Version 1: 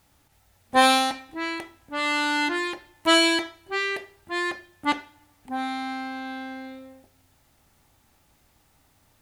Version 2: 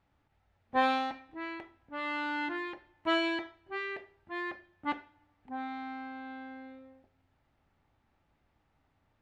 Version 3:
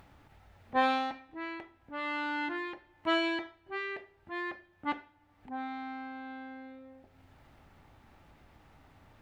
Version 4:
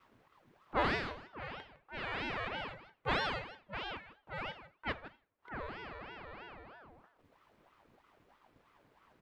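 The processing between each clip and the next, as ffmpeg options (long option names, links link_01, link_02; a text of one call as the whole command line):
ffmpeg -i in.wav -af "lowpass=2400,volume=-9dB" out.wav
ffmpeg -i in.wav -af "acompressor=mode=upward:threshold=-45dB:ratio=2.5" out.wav
ffmpeg -i in.wav -af "agate=range=-33dB:threshold=-54dB:ratio=3:detection=peak,aecho=1:1:158:0.2,aeval=exprs='val(0)*sin(2*PI*710*n/s+710*0.75/3.1*sin(2*PI*3.1*n/s))':channel_layout=same,volume=-1.5dB" out.wav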